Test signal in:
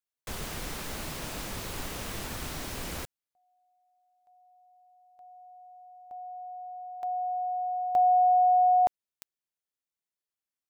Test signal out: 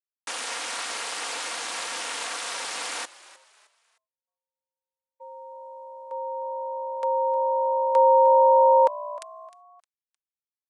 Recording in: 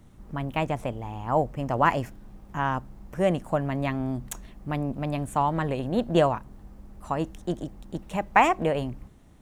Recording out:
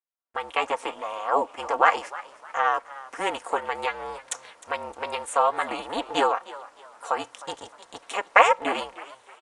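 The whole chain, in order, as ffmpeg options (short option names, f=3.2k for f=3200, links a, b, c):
-filter_complex "[0:a]highpass=f=680:w=0.5412,highpass=f=680:w=1.3066,agate=range=-46dB:threshold=-53dB:ratio=16:release=396:detection=rms,aecho=1:1:4.3:0.58,asplit=2[a][b];[b]acompressor=threshold=-32dB:ratio=6:attack=1.5:release=187:detection=rms,volume=1dB[c];[a][c]amix=inputs=2:normalize=0,aeval=exprs='val(0)*sin(2*PI*200*n/s)':c=same,asplit=2[d][e];[e]asplit=3[f][g][h];[f]adelay=308,afreqshift=61,volume=-18dB[i];[g]adelay=616,afreqshift=122,volume=-27.1dB[j];[h]adelay=924,afreqshift=183,volume=-36.2dB[k];[i][j][k]amix=inputs=3:normalize=0[l];[d][l]amix=inputs=2:normalize=0,aresample=22050,aresample=44100,volume=4.5dB"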